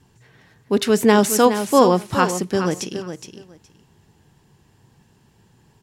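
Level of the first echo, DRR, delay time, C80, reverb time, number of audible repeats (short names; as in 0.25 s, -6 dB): -9.5 dB, none, 0.417 s, none, none, 2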